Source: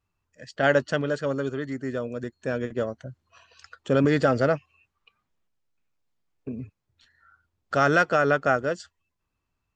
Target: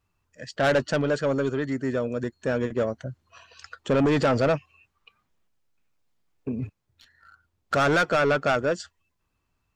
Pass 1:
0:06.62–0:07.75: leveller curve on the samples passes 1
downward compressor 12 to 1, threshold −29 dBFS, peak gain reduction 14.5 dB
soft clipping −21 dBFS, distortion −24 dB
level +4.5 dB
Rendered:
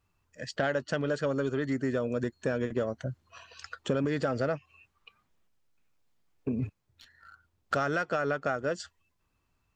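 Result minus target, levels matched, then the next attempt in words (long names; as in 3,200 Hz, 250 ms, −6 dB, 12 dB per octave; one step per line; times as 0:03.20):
downward compressor: peak gain reduction +14.5 dB
0:06.62–0:07.75: leveller curve on the samples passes 1
soft clipping −21 dBFS, distortion −9 dB
level +4.5 dB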